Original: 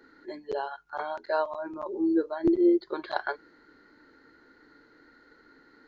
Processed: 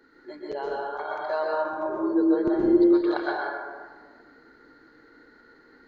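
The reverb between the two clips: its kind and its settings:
dense smooth reverb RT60 1.5 s, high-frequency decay 0.45×, pre-delay 110 ms, DRR −3.5 dB
level −2 dB

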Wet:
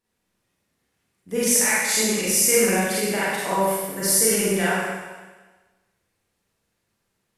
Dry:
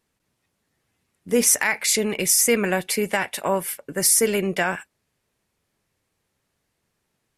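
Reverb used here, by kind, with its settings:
four-comb reverb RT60 1.3 s, combs from 32 ms, DRR −8.5 dB
level −8.5 dB

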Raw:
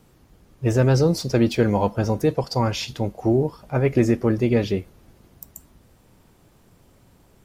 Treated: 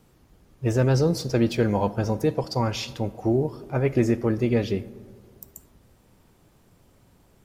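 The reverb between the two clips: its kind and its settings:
comb and all-pass reverb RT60 1.8 s, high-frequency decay 0.35×, pre-delay 15 ms, DRR 17.5 dB
level −3 dB

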